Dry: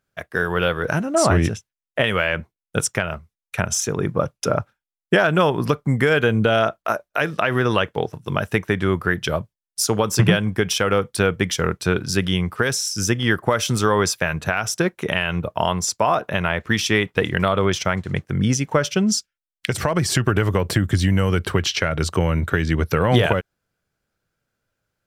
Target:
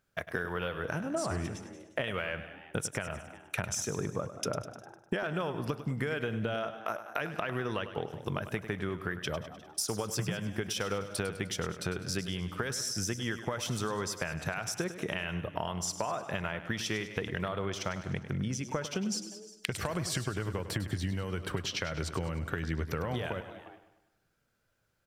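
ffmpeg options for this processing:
-filter_complex "[0:a]asplit=2[s0][s1];[s1]asplit=2[s2][s3];[s2]adelay=177,afreqshift=110,volume=0.0708[s4];[s3]adelay=354,afreqshift=220,volume=0.0248[s5];[s4][s5]amix=inputs=2:normalize=0[s6];[s0][s6]amix=inputs=2:normalize=0,acompressor=threshold=0.0251:ratio=6,asplit=2[s7][s8];[s8]aecho=0:1:101|202|303|404|505|606:0.251|0.133|0.0706|0.0374|0.0198|0.0105[s9];[s7][s9]amix=inputs=2:normalize=0"

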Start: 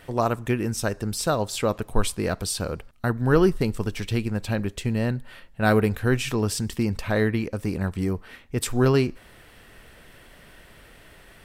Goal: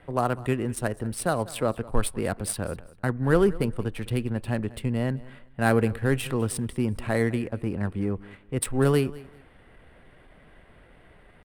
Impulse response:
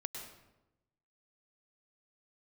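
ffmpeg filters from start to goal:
-filter_complex "[0:a]acrossover=split=240[s0][s1];[s1]adynamicsmooth=sensitivity=4:basefreq=2100[s2];[s0][s2]amix=inputs=2:normalize=0,highshelf=f=7200:t=q:w=3:g=7.5,aecho=1:1:197|394:0.1|0.025,asetrate=46722,aresample=44100,atempo=0.943874,volume=0.794"

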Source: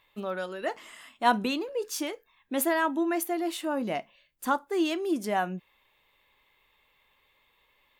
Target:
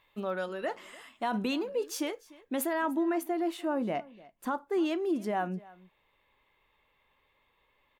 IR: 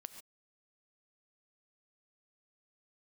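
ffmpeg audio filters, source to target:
-af "asetnsamples=n=441:p=0,asendcmd='2.73 highshelf g -11.5',highshelf=f=2700:g=-4.5,alimiter=limit=0.0794:level=0:latency=1:release=43,aecho=1:1:297:0.0841"

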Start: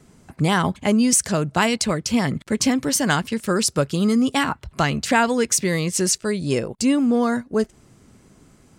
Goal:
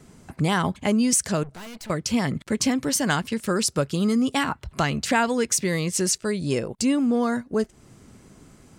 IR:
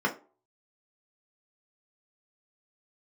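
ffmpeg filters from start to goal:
-filter_complex "[0:a]asplit=2[s0][s1];[s1]acompressor=threshold=0.0282:ratio=6,volume=1.19[s2];[s0][s2]amix=inputs=2:normalize=0,asettb=1/sr,asplit=3[s3][s4][s5];[s3]atrim=end=1.434[s6];[s4]atrim=start=1.43:end=1.9,asetpts=PTS-STARTPTS,afade=t=in:d=0.004:c=qsin,afade=t=out:st=0.466:d=0.004:c=qsin,aeval=exprs='(tanh(44.7*val(0)+0.55)-tanh(0.55))/44.7':c=same[s7];[s5]atrim=start=1.896[s8];[s6][s7]acrossfade=d=0.004:c1=hsin:c2=qsin[s9];[s9][s8]acrossfade=d=0.004:c1=qsin:c2=hsin,volume=0.562"

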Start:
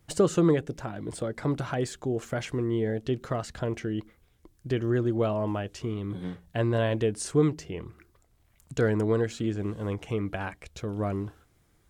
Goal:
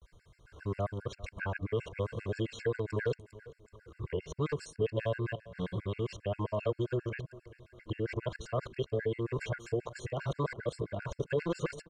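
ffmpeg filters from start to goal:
-filter_complex "[0:a]areverse,aeval=exprs='0.158*(abs(mod(val(0)/0.158+3,4)-2)-1)':c=same,aecho=1:1:1.9:0.62,acrossover=split=510|1500[s0][s1][s2];[s0]acompressor=threshold=0.0141:ratio=4[s3];[s1]acompressor=threshold=0.00891:ratio=4[s4];[s2]acompressor=threshold=0.00398:ratio=4[s5];[s3][s4][s5]amix=inputs=3:normalize=0,lowpass=5800,asplit=2[s6][s7];[s7]adelay=386,lowpass=f=3800:p=1,volume=0.119,asplit=2[s8][s9];[s9]adelay=386,lowpass=f=3800:p=1,volume=0.45,asplit=2[s10][s11];[s11]adelay=386,lowpass=f=3800:p=1,volume=0.45,asplit=2[s12][s13];[s13]adelay=386,lowpass=f=3800:p=1,volume=0.45[s14];[s8][s10][s12][s14]amix=inputs=4:normalize=0[s15];[s6][s15]amix=inputs=2:normalize=0,afftfilt=real='re*gt(sin(2*PI*7.5*pts/sr)*(1-2*mod(floor(b*sr/1024/1400),2)),0)':imag='im*gt(sin(2*PI*7.5*pts/sr)*(1-2*mod(floor(b*sr/1024/1400),2)),0)':win_size=1024:overlap=0.75,volume=1.68"

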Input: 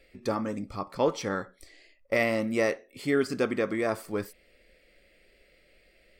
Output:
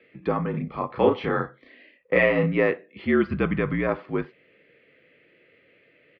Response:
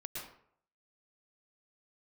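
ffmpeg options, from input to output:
-filter_complex "[0:a]asplit=3[s0][s1][s2];[s0]afade=t=out:st=0.53:d=0.02[s3];[s1]asplit=2[s4][s5];[s5]adelay=33,volume=0.75[s6];[s4][s6]amix=inputs=2:normalize=0,afade=t=in:st=0.53:d=0.02,afade=t=out:st=2.54:d=0.02[s7];[s2]afade=t=in:st=2.54:d=0.02[s8];[s3][s7][s8]amix=inputs=3:normalize=0,asplit=3[s9][s10][s11];[s9]afade=t=out:st=3.24:d=0.02[s12];[s10]asubboost=boost=8.5:cutoff=140,afade=t=in:st=3.24:d=0.02,afade=t=out:st=3.87:d=0.02[s13];[s11]afade=t=in:st=3.87:d=0.02[s14];[s12][s13][s14]amix=inputs=3:normalize=0,highpass=f=150:t=q:w=0.5412,highpass=f=150:t=q:w=1.307,lowpass=f=3200:t=q:w=0.5176,lowpass=f=3200:t=q:w=0.7071,lowpass=f=3200:t=q:w=1.932,afreqshift=-52,volume=1.68"

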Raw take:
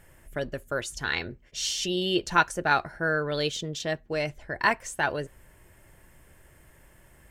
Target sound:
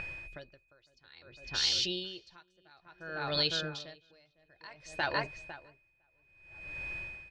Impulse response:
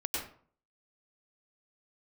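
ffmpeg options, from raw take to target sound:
-filter_complex "[0:a]aeval=exprs='val(0)+0.00398*sin(2*PI*2500*n/s)':c=same,lowpass=f=4400:t=q:w=4.1,acrossover=split=2700[s0][s1];[s0]acompressor=mode=upward:threshold=0.00891:ratio=2.5[s2];[s2][s1]amix=inputs=2:normalize=0,bandreject=f=430:w=12,asplit=2[s3][s4];[s4]adelay=504,lowpass=f=1800:p=1,volume=0.531,asplit=2[s5][s6];[s6]adelay=504,lowpass=f=1800:p=1,volume=0.26,asplit=2[s7][s8];[s8]adelay=504,lowpass=f=1800:p=1,volume=0.26[s9];[s5][s7][s9]amix=inputs=3:normalize=0[s10];[s3][s10]amix=inputs=2:normalize=0,acompressor=threshold=0.0141:ratio=2,equalizer=f=230:w=7.6:g=-14.5,aeval=exprs='val(0)*pow(10,-34*(0.5-0.5*cos(2*PI*0.58*n/s))/20)':c=same,volume=1.5"

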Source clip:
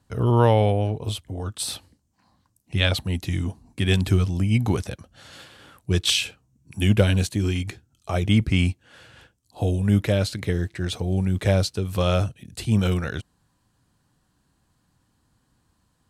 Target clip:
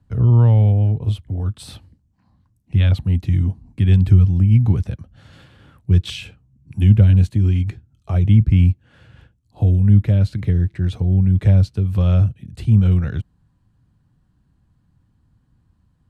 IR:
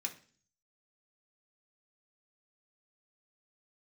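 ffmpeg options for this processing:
-filter_complex "[0:a]bass=f=250:g=14,treble=f=4000:g=-9,acrossover=split=200[s0][s1];[s1]acompressor=threshold=0.0631:ratio=2[s2];[s0][s2]amix=inputs=2:normalize=0,volume=0.631"

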